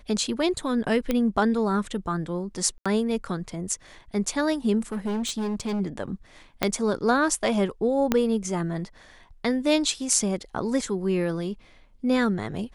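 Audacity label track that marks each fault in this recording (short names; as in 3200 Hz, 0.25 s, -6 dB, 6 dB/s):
1.110000	1.110000	pop -11 dBFS
2.780000	2.860000	gap 76 ms
4.920000	5.810000	clipped -24.5 dBFS
6.630000	6.630000	pop -6 dBFS
8.120000	8.120000	pop -7 dBFS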